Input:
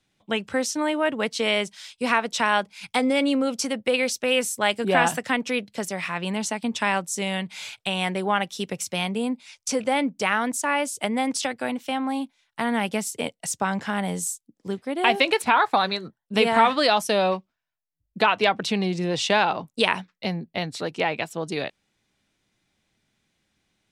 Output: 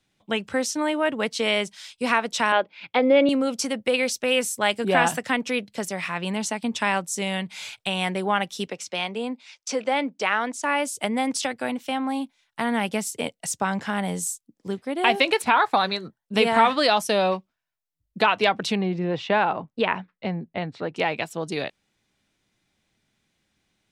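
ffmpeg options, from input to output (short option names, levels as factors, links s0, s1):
-filter_complex "[0:a]asettb=1/sr,asplit=3[s0][s1][s2];[s0]atrim=end=2.524[s3];[s1]atrim=start=2.52:end=3.29,asetpts=PTS-STARTPTS,afade=t=in:d=0.004:c=qsin,afade=t=out:st=0.766:d=0.004:c=qsin,highpass=140,equalizer=f=200:t=q:w=4:g=-8,equalizer=f=330:t=q:w=4:g=8,equalizer=f=550:t=q:w=4:g=8,lowpass=f=3600:w=0.5412,lowpass=f=3600:w=1.3066[s4];[s2]atrim=start=3.286[s5];[s3][s4]acrossfade=d=0.004:c1=hsin:c2=qsin[s6];[s6][s5]acrossfade=d=0.004:c1=qsin:c2=hsin,asettb=1/sr,asplit=3[s7][s8][s9];[s7]atrim=end=8.674[s10];[s8]atrim=start=8.67:end=10.63,asetpts=PTS-STARTPTS,afade=t=in:d=0.004:c=qsin,afade=t=out:st=1.956:d=0.004:c=qsin,acrossover=split=250 6900:gain=0.158 1 0.141[s11][s12][s13];[s11][s12][s13]amix=inputs=3:normalize=0[s14];[s9]atrim=start=10.626[s15];[s10][s14]acrossfade=d=0.004:c1=hsin:c2=qsin[s16];[s16][s15]acrossfade=d=0.004:c1=qsin:c2=hsin,asettb=1/sr,asplit=3[s17][s18][s19];[s17]atrim=end=18.754[s20];[s18]atrim=start=18.75:end=20.96,asetpts=PTS-STARTPTS,afade=t=in:d=0.004:c=qsin,afade=t=out:st=2.206:d=0.004:c=qsin,lowpass=2100[s21];[s19]atrim=start=20.956[s22];[s20][s21]acrossfade=d=0.004:c1=hsin:c2=qsin[s23];[s23][s22]acrossfade=d=0.004:c1=qsin:c2=hsin"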